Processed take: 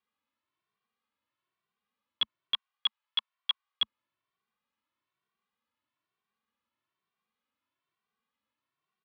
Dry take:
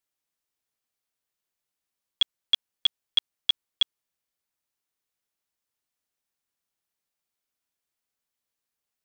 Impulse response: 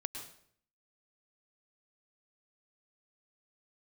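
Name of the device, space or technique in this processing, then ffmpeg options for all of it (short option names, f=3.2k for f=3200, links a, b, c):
barber-pole flanger into a guitar amplifier: -filter_complex "[0:a]asettb=1/sr,asplit=3[a][b][c];[a]atrim=end=2.544[d];[b]atrim=start=2.54:end=3.82,asetpts=PTS-STARTPTS,afade=t=in:d=0.004:c=qsin,afade=t=out:st=1.276:d=0.004:c=qsin,highpass=f=700:w=0.5412,highpass=f=700:w=1.3066[e];[c]atrim=start=3.816[f];[d][e]acrossfade=d=0.004:c1=hsin:c2=qsin[g];[g][f]acrossfade=d=0.004:c1=qsin:c2=hsin,asplit=2[h][i];[i]adelay=2.1,afreqshift=1.1[j];[h][j]amix=inputs=2:normalize=1,asoftclip=type=tanh:threshold=-24.5dB,highpass=80,equalizer=f=220:t=q:w=4:g=7,equalizer=f=690:t=q:w=4:g=-4,equalizer=f=1.1k:t=q:w=4:g=10,lowpass=f=3.6k:w=0.5412,lowpass=f=3.6k:w=1.3066,volume=5.5dB"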